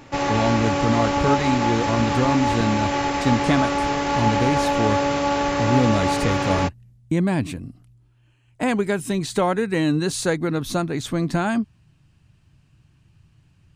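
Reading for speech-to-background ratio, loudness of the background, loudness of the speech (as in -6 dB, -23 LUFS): -1.5 dB, -22.0 LUFS, -23.5 LUFS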